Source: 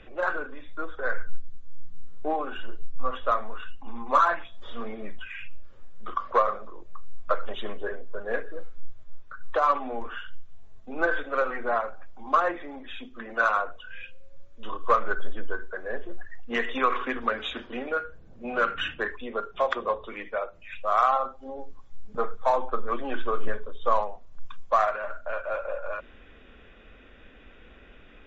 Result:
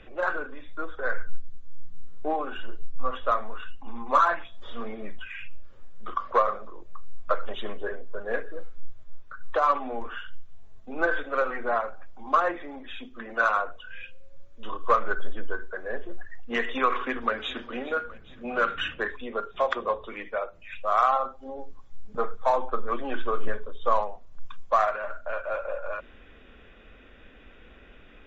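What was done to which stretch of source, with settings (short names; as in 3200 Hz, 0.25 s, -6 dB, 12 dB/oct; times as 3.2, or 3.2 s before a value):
17.04–17.76 echo throw 0.41 s, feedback 60%, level -17 dB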